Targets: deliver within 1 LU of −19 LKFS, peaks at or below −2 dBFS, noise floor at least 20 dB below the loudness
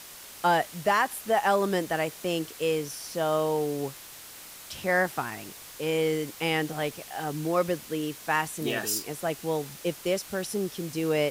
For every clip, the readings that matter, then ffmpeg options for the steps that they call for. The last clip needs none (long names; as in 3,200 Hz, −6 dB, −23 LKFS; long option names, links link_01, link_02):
background noise floor −46 dBFS; target noise floor −49 dBFS; integrated loudness −28.5 LKFS; sample peak −12.5 dBFS; target loudness −19.0 LKFS
→ -af "afftdn=noise_reduction=6:noise_floor=-46"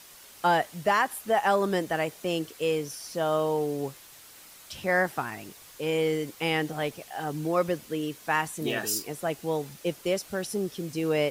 background noise floor −50 dBFS; integrated loudness −28.5 LKFS; sample peak −13.0 dBFS; target loudness −19.0 LKFS
→ -af "volume=9.5dB"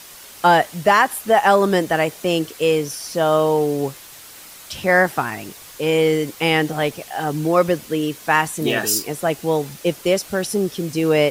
integrated loudness −19.0 LKFS; sample peak −3.5 dBFS; background noise floor −41 dBFS